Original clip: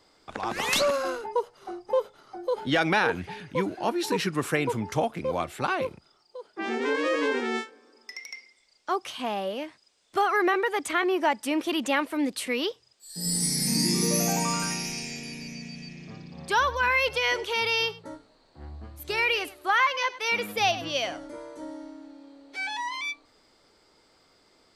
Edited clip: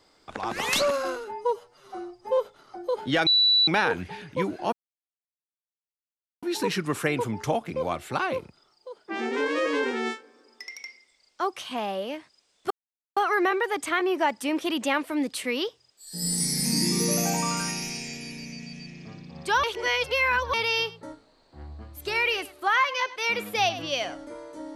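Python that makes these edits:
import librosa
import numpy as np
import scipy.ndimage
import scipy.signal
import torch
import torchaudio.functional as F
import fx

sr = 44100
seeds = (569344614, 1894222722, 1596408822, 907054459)

y = fx.edit(x, sr, fx.stretch_span(start_s=1.16, length_s=0.81, factor=1.5),
    fx.insert_tone(at_s=2.86, length_s=0.41, hz=3950.0, db=-16.5),
    fx.insert_silence(at_s=3.91, length_s=1.7),
    fx.insert_silence(at_s=10.19, length_s=0.46),
    fx.reverse_span(start_s=16.66, length_s=0.9), tone=tone)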